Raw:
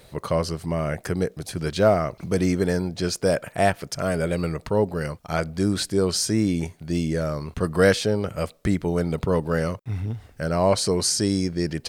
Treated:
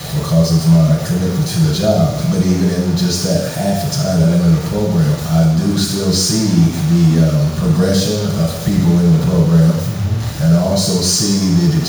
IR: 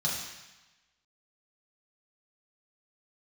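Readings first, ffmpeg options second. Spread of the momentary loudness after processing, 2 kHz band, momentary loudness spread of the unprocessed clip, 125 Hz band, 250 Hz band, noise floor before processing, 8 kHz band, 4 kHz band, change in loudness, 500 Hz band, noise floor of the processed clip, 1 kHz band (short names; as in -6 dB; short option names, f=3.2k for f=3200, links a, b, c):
5 LU, +1.0 dB, 8 LU, +15.0 dB, +12.0 dB, -53 dBFS, +10.0 dB, +10.0 dB, +10.0 dB, +3.5 dB, -22 dBFS, +3.0 dB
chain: -filter_complex "[0:a]aeval=exprs='val(0)+0.5*0.0631*sgn(val(0))':c=same,acrossover=split=640|3800[a][b][c];[b]acompressor=threshold=-35dB:ratio=6[d];[c]acrusher=bits=2:mode=log:mix=0:aa=0.000001[e];[a][d][e]amix=inputs=3:normalize=0[f];[1:a]atrim=start_sample=2205[g];[f][g]afir=irnorm=-1:irlink=0,volume=-2.5dB"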